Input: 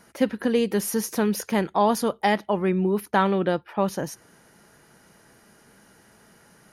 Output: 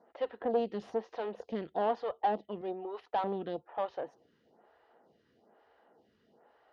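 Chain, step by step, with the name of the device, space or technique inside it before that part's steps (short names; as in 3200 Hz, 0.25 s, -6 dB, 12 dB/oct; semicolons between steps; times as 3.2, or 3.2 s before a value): 2.61–3.24 RIAA curve recording; vibe pedal into a guitar amplifier (photocell phaser 1.1 Hz; tube stage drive 23 dB, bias 0.6; speaker cabinet 86–3600 Hz, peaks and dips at 120 Hz -10 dB, 180 Hz -9 dB, 480 Hz +6 dB, 730 Hz +9 dB, 1500 Hz -6 dB, 2300 Hz -9 dB); gain -5 dB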